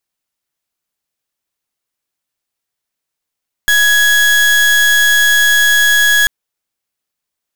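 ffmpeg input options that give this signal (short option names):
-f lavfi -i "aevalsrc='0.316*(2*lt(mod(1670*t,1),0.36)-1)':d=2.59:s=44100"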